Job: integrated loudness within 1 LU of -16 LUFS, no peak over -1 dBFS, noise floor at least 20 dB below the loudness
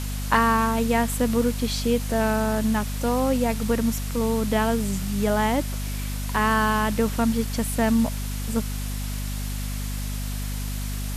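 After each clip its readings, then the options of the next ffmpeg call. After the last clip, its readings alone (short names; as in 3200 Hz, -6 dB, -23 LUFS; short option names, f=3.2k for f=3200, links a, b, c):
hum 50 Hz; harmonics up to 250 Hz; hum level -27 dBFS; noise floor -29 dBFS; noise floor target -45 dBFS; loudness -24.5 LUFS; peak -5.5 dBFS; loudness target -16.0 LUFS
-> -af "bandreject=f=50:t=h:w=6,bandreject=f=100:t=h:w=6,bandreject=f=150:t=h:w=6,bandreject=f=200:t=h:w=6,bandreject=f=250:t=h:w=6"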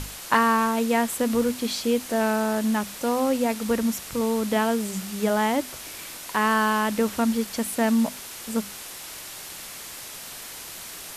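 hum none; noise floor -39 dBFS; noise floor target -44 dBFS
-> -af "afftdn=nr=6:nf=-39"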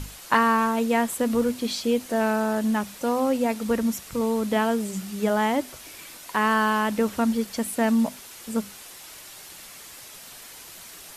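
noise floor -44 dBFS; noise floor target -45 dBFS
-> -af "afftdn=nr=6:nf=-44"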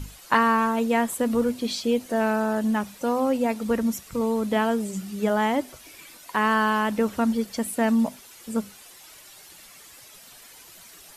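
noise floor -48 dBFS; loudness -24.5 LUFS; peak -5.0 dBFS; loudness target -16.0 LUFS
-> -af "volume=8.5dB,alimiter=limit=-1dB:level=0:latency=1"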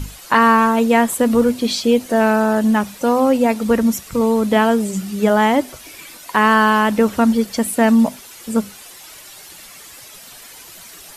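loudness -16.0 LUFS; peak -1.0 dBFS; noise floor -40 dBFS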